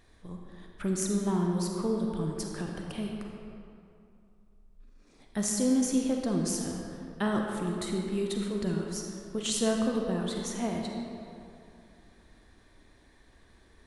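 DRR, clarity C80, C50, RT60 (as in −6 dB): 0.5 dB, 2.5 dB, 1.5 dB, 2.6 s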